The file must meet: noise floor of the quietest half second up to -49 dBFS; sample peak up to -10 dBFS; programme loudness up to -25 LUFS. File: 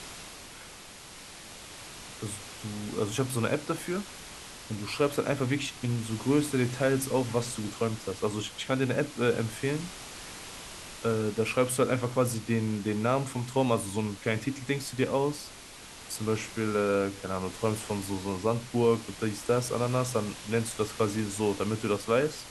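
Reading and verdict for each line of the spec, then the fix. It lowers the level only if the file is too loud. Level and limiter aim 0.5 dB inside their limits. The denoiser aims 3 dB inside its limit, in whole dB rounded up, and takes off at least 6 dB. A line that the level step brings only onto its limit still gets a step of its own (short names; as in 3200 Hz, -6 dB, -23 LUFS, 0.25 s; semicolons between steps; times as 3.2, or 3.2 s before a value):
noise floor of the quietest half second -47 dBFS: fail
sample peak -11.5 dBFS: OK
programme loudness -30.0 LUFS: OK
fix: denoiser 6 dB, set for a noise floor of -47 dBFS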